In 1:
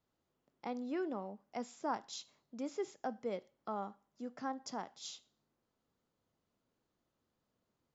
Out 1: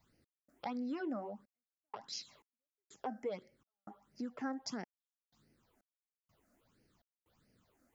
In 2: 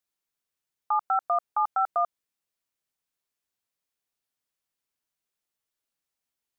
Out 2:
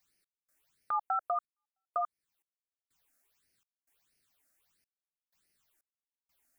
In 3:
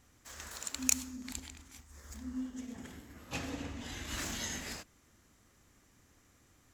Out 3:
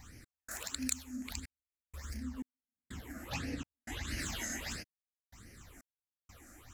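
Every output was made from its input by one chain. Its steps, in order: phaser stages 8, 1.5 Hz, lowest notch 120–1100 Hz; compressor 2:1, threshold -57 dBFS; step gate "x.xxxx..xx..xx" 62 bpm -60 dB; gain +12.5 dB

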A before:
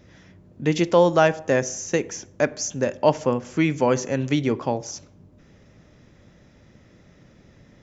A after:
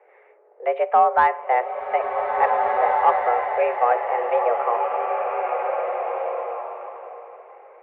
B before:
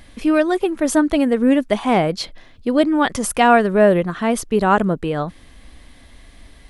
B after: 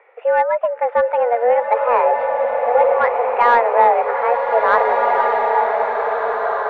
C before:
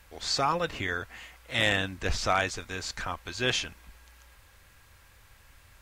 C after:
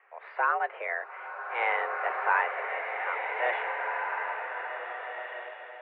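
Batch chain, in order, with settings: mistuned SSB +240 Hz 190–2100 Hz; overdrive pedal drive 9 dB, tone 1400 Hz, clips at -0.5 dBFS; bloom reverb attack 1.85 s, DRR 1 dB; gain -1 dB

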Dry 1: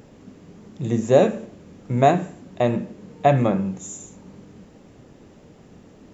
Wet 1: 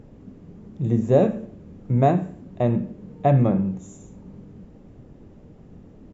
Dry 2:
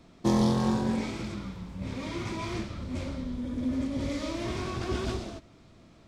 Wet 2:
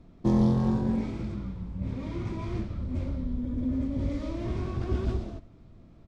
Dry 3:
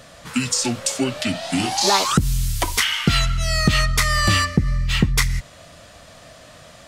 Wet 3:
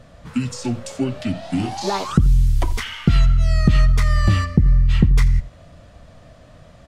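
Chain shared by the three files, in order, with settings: tilt -3 dB/oct; on a send: echo 85 ms -19.5 dB; on the sum: gain -5.5 dB

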